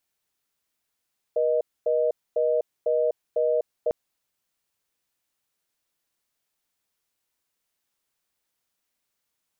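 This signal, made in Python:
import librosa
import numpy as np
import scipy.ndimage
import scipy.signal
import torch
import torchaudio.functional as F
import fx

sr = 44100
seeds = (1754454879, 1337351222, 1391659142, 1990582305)

y = fx.call_progress(sr, length_s=2.55, kind='reorder tone', level_db=-22.5)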